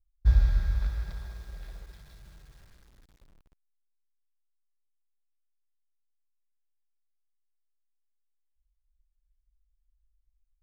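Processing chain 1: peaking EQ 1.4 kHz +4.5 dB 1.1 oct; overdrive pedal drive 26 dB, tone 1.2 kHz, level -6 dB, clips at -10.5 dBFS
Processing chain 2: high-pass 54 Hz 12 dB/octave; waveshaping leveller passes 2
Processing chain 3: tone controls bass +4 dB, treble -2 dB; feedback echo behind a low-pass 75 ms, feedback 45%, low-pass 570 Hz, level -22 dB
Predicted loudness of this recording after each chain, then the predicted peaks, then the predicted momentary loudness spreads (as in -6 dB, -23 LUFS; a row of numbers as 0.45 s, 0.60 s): -30.0 LUFS, -27.5 LUFS, -24.5 LUFS; -12.0 dBFS, -13.5 dBFS, -7.0 dBFS; 21 LU, 19 LU, 20 LU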